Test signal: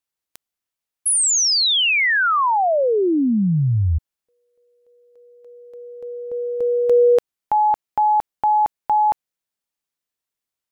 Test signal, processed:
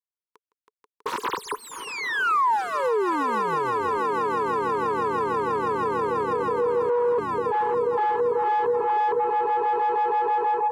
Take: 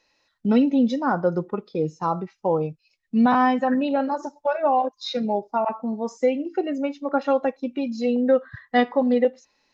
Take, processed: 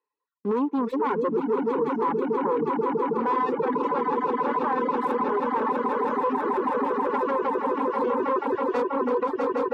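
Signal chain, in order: tracing distortion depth 0.39 ms; on a send: swelling echo 0.162 s, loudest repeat 8, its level -8 dB; on the sum: AGC gain up to 5 dB; reverb removal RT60 0.72 s; sample leveller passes 3; double band-pass 660 Hz, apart 1.2 oct; reverb removal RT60 0.62 s; limiter -16.5 dBFS

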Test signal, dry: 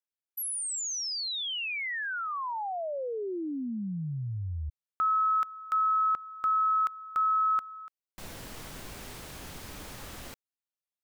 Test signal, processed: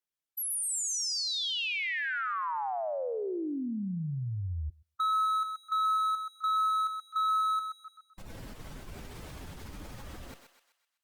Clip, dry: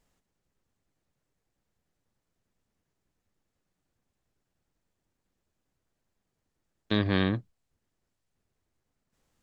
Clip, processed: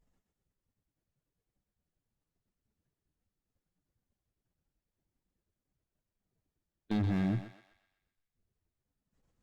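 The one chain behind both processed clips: spectral contrast raised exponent 1.6; hard clip -26.5 dBFS; on a send: thinning echo 0.127 s, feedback 50%, high-pass 700 Hz, level -6 dB; on the sum: Opus 64 kbps 48000 Hz

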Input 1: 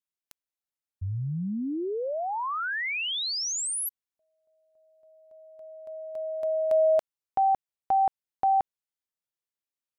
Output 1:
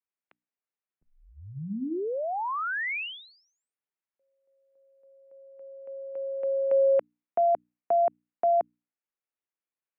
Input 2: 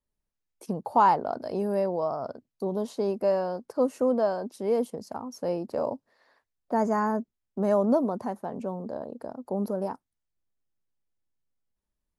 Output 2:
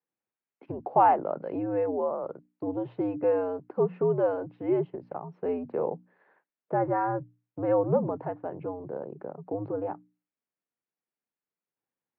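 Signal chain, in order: mistuned SSB -90 Hz 270–2700 Hz; notches 60/120/180/240/300 Hz

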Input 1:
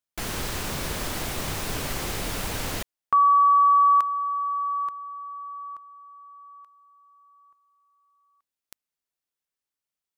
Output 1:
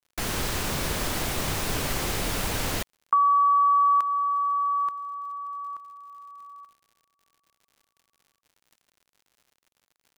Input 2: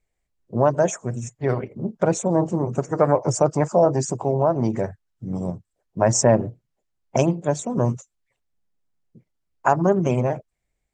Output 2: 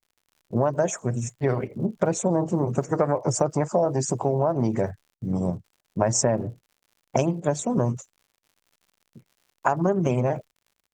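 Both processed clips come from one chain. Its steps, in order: gate with hold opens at -45 dBFS, closes at -51 dBFS, hold 29 ms, range -21 dB; compressor 6:1, threshold -20 dBFS; crackle 95/s -50 dBFS; gain +2 dB

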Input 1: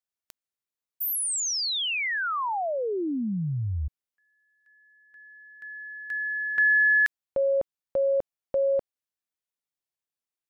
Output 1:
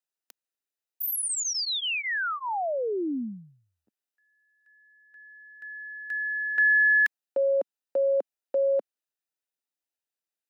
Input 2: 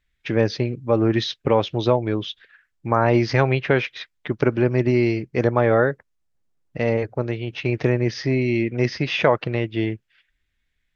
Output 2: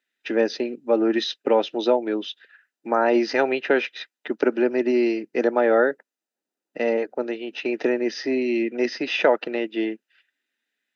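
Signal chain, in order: steep high-pass 230 Hz 36 dB/oct; notch comb 1100 Hz

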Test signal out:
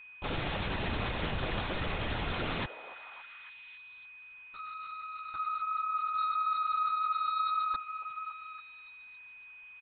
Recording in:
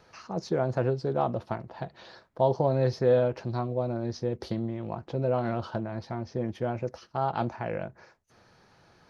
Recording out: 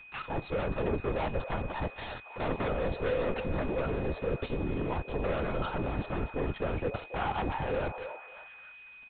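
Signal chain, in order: sample leveller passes 5; comb 2.2 ms, depth 70%; reverse; compressor, threshold -22 dBFS; reverse; band noise 760–3000 Hz -60 dBFS; LPC vocoder at 8 kHz whisper; on a send: delay with a stepping band-pass 0.28 s, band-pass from 630 Hz, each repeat 0.7 oct, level -8 dB; on the sum: whine 2500 Hz -41 dBFS; gain -7.5 dB

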